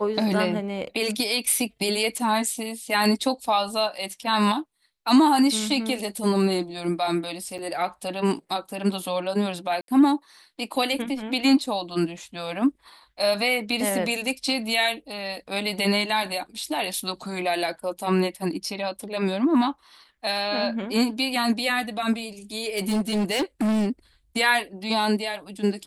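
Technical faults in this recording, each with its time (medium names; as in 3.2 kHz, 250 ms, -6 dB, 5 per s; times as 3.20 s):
7.58–7.59 s: dropout 7.1 ms
9.81–9.88 s: dropout 72 ms
22.61–23.88 s: clipped -20 dBFS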